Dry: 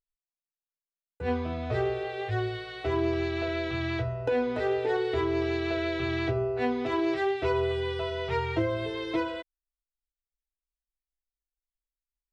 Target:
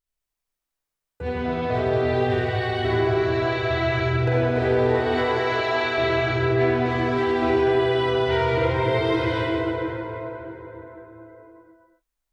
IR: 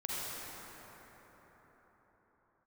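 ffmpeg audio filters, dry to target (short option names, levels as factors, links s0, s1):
-filter_complex "[0:a]asettb=1/sr,asplit=3[s0][s1][s2];[s0]atrim=end=4.954[s3];[s1]atrim=start=4.95:end=5.98,asetpts=PTS-STARTPTS,afade=t=in:d=0.004:c=qsin,afade=t=out:st=1.026:d=0.004:c=qsin,highpass=f=600:w=0.5412,highpass=f=600:w=1.3066[s4];[s2]atrim=start=5.976[s5];[s3][s4]acrossfade=d=0.004:c1=hsin:c2=qsin[s6];[s6][s5]acrossfade=d=0.004:c1=qsin:c2=hsin,acompressor=threshold=0.0316:ratio=6[s7];[1:a]atrim=start_sample=2205[s8];[s7][s8]afir=irnorm=-1:irlink=0,volume=2.37"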